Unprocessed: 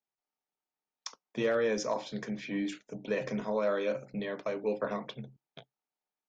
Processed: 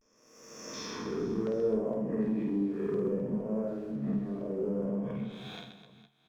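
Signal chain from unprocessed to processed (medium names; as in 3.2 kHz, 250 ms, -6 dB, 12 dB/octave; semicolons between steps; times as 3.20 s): reverse spectral sustain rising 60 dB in 1.74 s; low-pass that closes with the level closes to 310 Hz, closed at -28 dBFS; 1.07–3.08 s: peaking EQ 410 Hz +9 dB 0.29 oct; waveshaping leveller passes 1; in parallel at -3 dB: compression, threshold -37 dBFS, peak gain reduction 12.5 dB; on the sum: vibrato 0.58 Hz 76 cents; LFO notch square 0.68 Hz 550–3900 Hz; reverse bouncing-ball echo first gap 50 ms, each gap 1.6×, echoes 5; on a send at -12.5 dB: reverberation, pre-delay 3 ms; on the sum: trim -5.5 dB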